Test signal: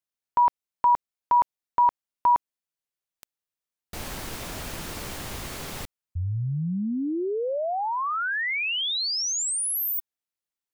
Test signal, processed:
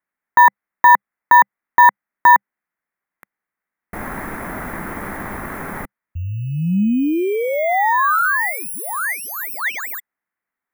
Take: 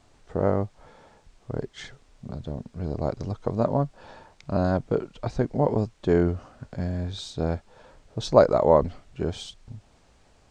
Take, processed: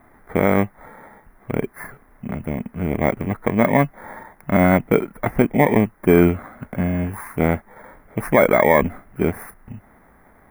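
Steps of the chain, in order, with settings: FFT order left unsorted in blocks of 16 samples; EQ curve 130 Hz 0 dB, 200 Hz +9 dB, 520 Hz +4 dB, 810 Hz +9 dB, 2000 Hz +14 dB, 2900 Hz -8 dB, 4600 Hz -18 dB, 7600 Hz -12 dB, 11000 Hz -4 dB; maximiser +4 dB; gain -1 dB

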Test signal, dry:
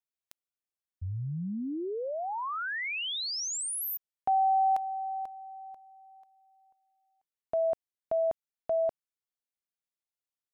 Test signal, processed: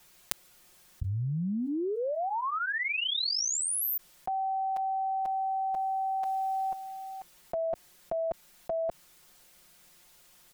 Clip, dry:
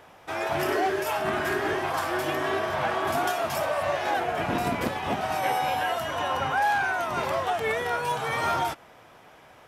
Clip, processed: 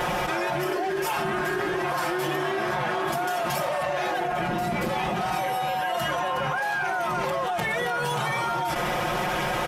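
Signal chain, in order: low shelf 120 Hz +6.5 dB; comb 5.6 ms, depth 98%; fast leveller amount 100%; gain -8 dB

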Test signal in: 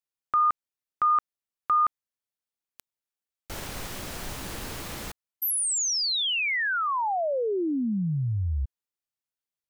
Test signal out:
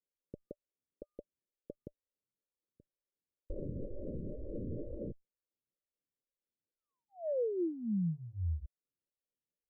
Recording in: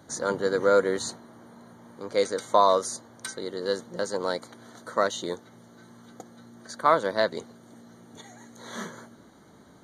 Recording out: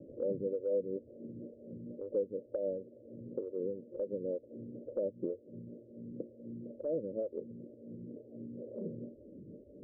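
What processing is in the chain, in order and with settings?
Chebyshev low-pass 590 Hz, order 8; compressor 4:1, threshold -40 dBFS; photocell phaser 2.1 Hz; gain +7 dB

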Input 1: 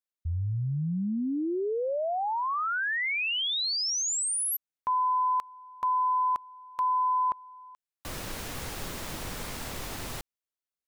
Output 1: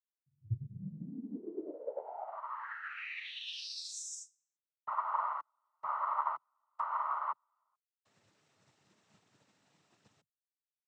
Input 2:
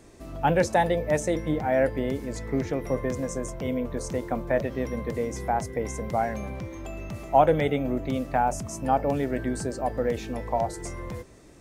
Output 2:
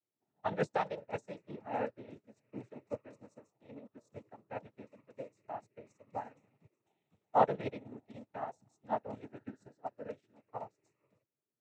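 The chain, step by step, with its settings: noise vocoder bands 12; upward expander 2.5:1, over -41 dBFS; gain -5.5 dB

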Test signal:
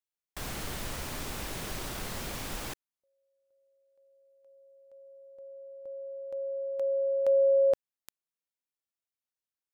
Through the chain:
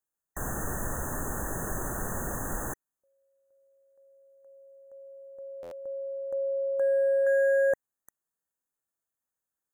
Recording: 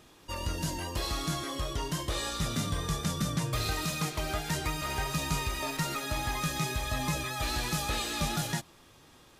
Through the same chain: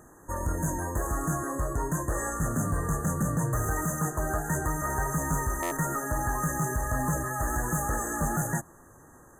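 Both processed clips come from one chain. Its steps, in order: hard clip -27 dBFS; brick-wall FIR band-stop 1900–6100 Hz; stuck buffer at 5.62, samples 512, times 7; gain +5 dB

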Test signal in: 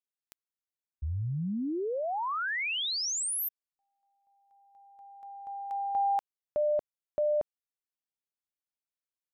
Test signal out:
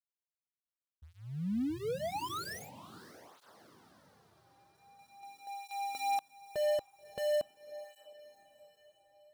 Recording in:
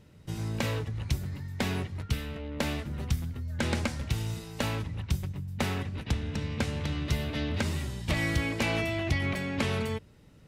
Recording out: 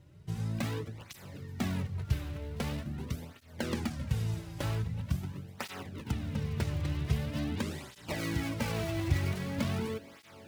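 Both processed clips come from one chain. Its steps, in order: switching dead time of 0.18 ms; low shelf 320 Hz +4 dB; diffused feedback echo 0.583 s, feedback 50%, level -15.5 dB; tape flanging out of phase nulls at 0.44 Hz, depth 4.7 ms; gain -2.5 dB

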